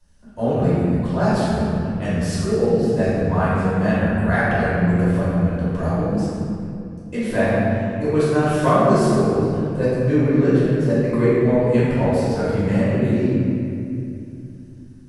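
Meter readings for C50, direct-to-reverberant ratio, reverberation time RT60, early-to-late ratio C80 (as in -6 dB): -4.5 dB, -12.0 dB, 2.6 s, -2.0 dB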